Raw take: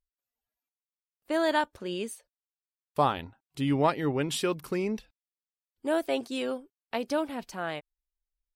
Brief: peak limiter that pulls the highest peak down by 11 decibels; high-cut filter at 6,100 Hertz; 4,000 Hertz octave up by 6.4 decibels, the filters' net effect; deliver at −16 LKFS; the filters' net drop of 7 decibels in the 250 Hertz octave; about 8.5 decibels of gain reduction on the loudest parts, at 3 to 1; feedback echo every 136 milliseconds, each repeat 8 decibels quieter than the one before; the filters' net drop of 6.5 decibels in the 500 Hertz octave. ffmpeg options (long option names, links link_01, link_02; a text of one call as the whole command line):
ffmpeg -i in.wav -af "lowpass=6100,equalizer=frequency=250:width_type=o:gain=-6.5,equalizer=frequency=500:width_type=o:gain=-7.5,equalizer=frequency=4000:width_type=o:gain=9,acompressor=threshold=-33dB:ratio=3,alimiter=level_in=4.5dB:limit=-24dB:level=0:latency=1,volume=-4.5dB,aecho=1:1:136|272|408|544|680:0.398|0.159|0.0637|0.0255|0.0102,volume=24dB" out.wav